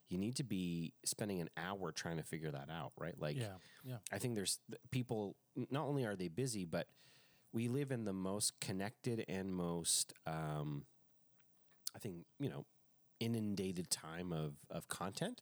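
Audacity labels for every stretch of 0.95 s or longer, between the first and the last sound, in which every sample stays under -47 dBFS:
10.810000	11.860000	silence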